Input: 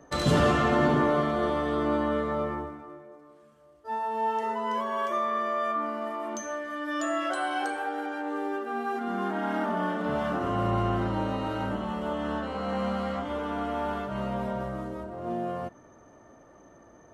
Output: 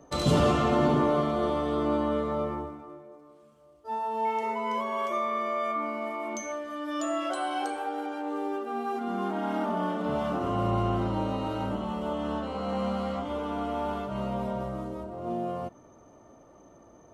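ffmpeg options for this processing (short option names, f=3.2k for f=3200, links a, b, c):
-filter_complex "[0:a]equalizer=f=1.7k:t=o:w=0.44:g=-10,asettb=1/sr,asplit=3[a][b][c];[a]atrim=end=4.254[d];[b]atrim=start=4.25:end=6.52,asetpts=PTS-STARTPTS,afade=t=in:d=0.004:c=qsin,afade=t=out:st=2.266:d=0.004:c=qsin,aeval=exprs='val(0)+0.00794*sin(2*PI*2200*n/s)':c=same[e];[c]atrim=start=6.516[f];[d][e]acrossfade=d=0.004:c1=hsin:c2=qsin[g];[g][f]acrossfade=d=0.004:c1=qsin:c2=hsin"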